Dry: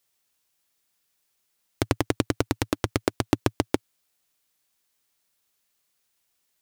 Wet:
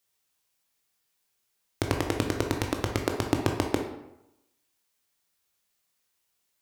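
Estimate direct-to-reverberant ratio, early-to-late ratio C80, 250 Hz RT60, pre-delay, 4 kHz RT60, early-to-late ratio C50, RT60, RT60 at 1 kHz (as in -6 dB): 2.0 dB, 8.5 dB, 0.85 s, 15 ms, 0.55 s, 5.5 dB, 0.90 s, 0.90 s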